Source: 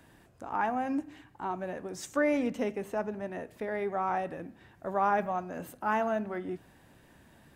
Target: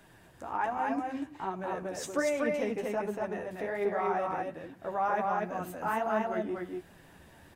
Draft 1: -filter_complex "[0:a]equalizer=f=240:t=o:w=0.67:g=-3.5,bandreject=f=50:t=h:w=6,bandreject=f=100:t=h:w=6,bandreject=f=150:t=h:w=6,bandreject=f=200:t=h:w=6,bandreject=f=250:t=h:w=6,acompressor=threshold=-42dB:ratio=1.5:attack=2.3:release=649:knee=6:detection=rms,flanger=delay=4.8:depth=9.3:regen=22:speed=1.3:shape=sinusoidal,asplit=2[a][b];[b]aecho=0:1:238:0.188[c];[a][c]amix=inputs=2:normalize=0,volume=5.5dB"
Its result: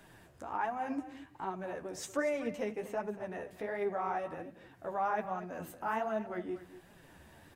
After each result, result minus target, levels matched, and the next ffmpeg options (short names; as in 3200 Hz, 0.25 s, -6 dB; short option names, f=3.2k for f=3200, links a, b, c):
echo-to-direct -12 dB; compressor: peak gain reduction +3 dB
-filter_complex "[0:a]equalizer=f=240:t=o:w=0.67:g=-3.5,bandreject=f=50:t=h:w=6,bandreject=f=100:t=h:w=6,bandreject=f=150:t=h:w=6,bandreject=f=200:t=h:w=6,bandreject=f=250:t=h:w=6,acompressor=threshold=-42dB:ratio=1.5:attack=2.3:release=649:knee=6:detection=rms,flanger=delay=4.8:depth=9.3:regen=22:speed=1.3:shape=sinusoidal,asplit=2[a][b];[b]aecho=0:1:238:0.75[c];[a][c]amix=inputs=2:normalize=0,volume=5.5dB"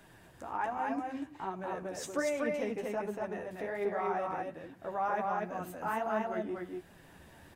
compressor: peak gain reduction +3 dB
-filter_complex "[0:a]equalizer=f=240:t=o:w=0.67:g=-3.5,bandreject=f=50:t=h:w=6,bandreject=f=100:t=h:w=6,bandreject=f=150:t=h:w=6,bandreject=f=200:t=h:w=6,bandreject=f=250:t=h:w=6,acompressor=threshold=-33dB:ratio=1.5:attack=2.3:release=649:knee=6:detection=rms,flanger=delay=4.8:depth=9.3:regen=22:speed=1.3:shape=sinusoidal,asplit=2[a][b];[b]aecho=0:1:238:0.75[c];[a][c]amix=inputs=2:normalize=0,volume=5.5dB"